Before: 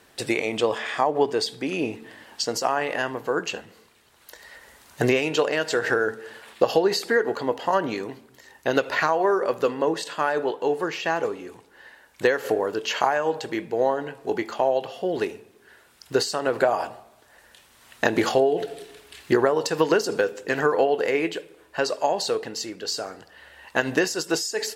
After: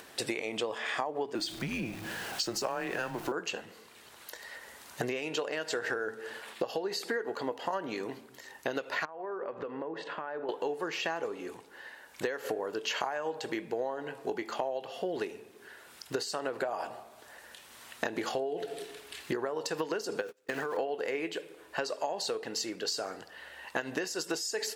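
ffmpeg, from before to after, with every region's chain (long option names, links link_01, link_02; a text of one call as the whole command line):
ffmpeg -i in.wav -filter_complex "[0:a]asettb=1/sr,asplit=3[link_01][link_02][link_03];[link_01]atrim=end=1.354[link_04];[link_02]atrim=start=1.35:end=3.32,asetpts=PTS-STARTPTS,afade=type=in:duration=0.004:curve=qsin,afade=type=out:start_time=1.966:duration=0.004:curve=qsin,aeval=exprs='val(0)+0.5*0.0158*sgn(val(0))':channel_layout=same,afreqshift=-120[link_05];[link_03]atrim=start=3.316[link_06];[link_04][link_05]acrossfade=duration=0.004:curve1=hsin:curve2=qsin[link_07];[link_07][link_06]acrossfade=duration=0.004:curve1=qsin:curve2=hsin,asettb=1/sr,asplit=3[link_08][link_09][link_10];[link_08]atrim=end=9.054[link_11];[link_09]atrim=start=9.05:end=10.49,asetpts=PTS-STARTPTS,afade=type=in:duration=0.004:curve=qsin,afade=type=out:start_time=1.436:duration=0.004:curve=qsin,lowpass=1900,acompressor=threshold=-33dB:ratio=8:attack=3.2:release=140:knee=1:detection=peak[link_12];[link_10]atrim=start=10.486[link_13];[link_11][link_12]acrossfade=duration=0.004:curve1=hsin:curve2=qsin[link_14];[link_14][link_13]acrossfade=duration=0.004:curve1=qsin:curve2=hsin,asettb=1/sr,asplit=3[link_15][link_16][link_17];[link_15]atrim=end=20.214[link_18];[link_16]atrim=start=20.21:end=20.77,asetpts=PTS-STARTPTS,afade=type=in:duration=0.004:curve=qsin,afade=type=out:start_time=0.556:duration=0.004:curve=qsin,aeval=exprs='val(0)+0.5*0.02*sgn(val(0))':channel_layout=same,agate=range=-35dB:threshold=-29dB:ratio=16:release=100:detection=peak,acompressor=threshold=-26dB:ratio=4:attack=3.2:release=140:knee=1:detection=peak[link_19];[link_17]atrim=start=20.766[link_20];[link_18][link_19]acrossfade=duration=0.004:curve1=hsin:curve2=qsin[link_21];[link_21][link_20]acrossfade=duration=0.004:curve1=qsin:curve2=hsin,acompressor=threshold=-30dB:ratio=6,lowshelf=frequency=110:gain=-12,acompressor=mode=upward:threshold=-46dB:ratio=2.5" out.wav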